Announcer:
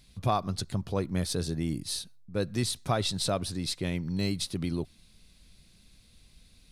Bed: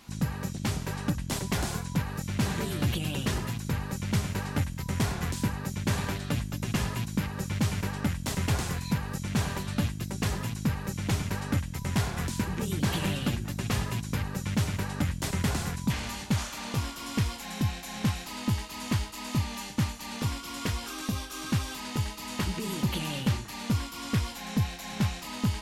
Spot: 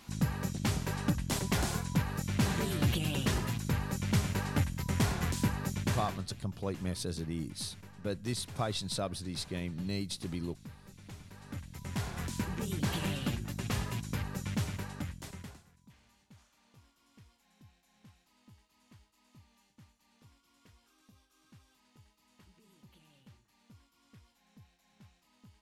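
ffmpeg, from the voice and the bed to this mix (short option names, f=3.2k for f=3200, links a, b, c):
-filter_complex "[0:a]adelay=5700,volume=-6dB[a];[1:a]volume=14dB,afade=t=out:st=5.71:d=0.59:silence=0.112202,afade=t=in:st=11.33:d=1.09:silence=0.16788,afade=t=out:st=14.45:d=1.18:silence=0.0473151[b];[a][b]amix=inputs=2:normalize=0"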